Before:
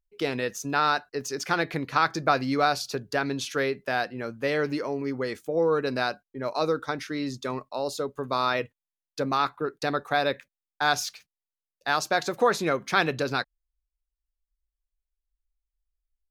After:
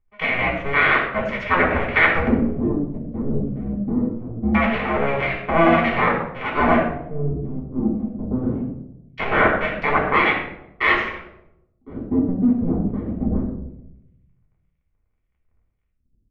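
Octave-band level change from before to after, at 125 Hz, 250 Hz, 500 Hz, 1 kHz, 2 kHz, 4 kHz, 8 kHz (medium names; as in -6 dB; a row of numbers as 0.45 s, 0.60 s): +10.5 dB, +11.0 dB, +3.5 dB, +4.5 dB, +9.0 dB, -1.5 dB, under -25 dB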